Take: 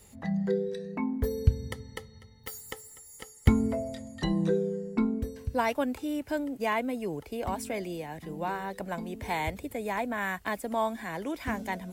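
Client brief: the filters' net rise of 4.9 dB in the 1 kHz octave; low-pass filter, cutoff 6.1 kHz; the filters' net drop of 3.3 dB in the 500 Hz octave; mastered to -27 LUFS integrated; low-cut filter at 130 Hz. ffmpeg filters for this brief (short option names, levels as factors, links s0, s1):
-af "highpass=130,lowpass=6100,equalizer=f=500:t=o:g=-7,equalizer=f=1000:t=o:g=8,volume=1.78"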